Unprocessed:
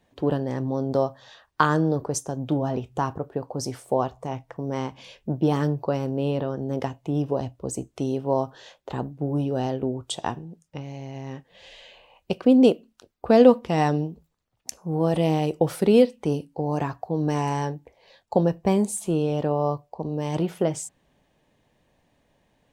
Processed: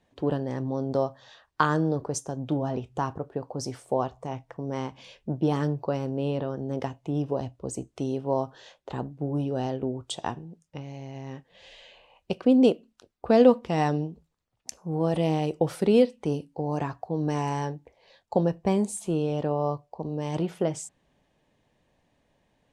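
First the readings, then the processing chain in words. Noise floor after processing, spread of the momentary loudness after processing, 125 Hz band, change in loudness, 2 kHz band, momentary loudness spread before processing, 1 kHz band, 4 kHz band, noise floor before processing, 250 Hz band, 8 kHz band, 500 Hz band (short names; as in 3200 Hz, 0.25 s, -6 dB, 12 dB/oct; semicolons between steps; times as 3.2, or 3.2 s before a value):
-72 dBFS, 17 LU, -3.0 dB, -3.0 dB, -3.0 dB, 16 LU, -3.0 dB, -3.0 dB, -69 dBFS, -3.0 dB, -4.0 dB, -3.0 dB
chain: LPF 10000 Hz 12 dB/oct; gain -3 dB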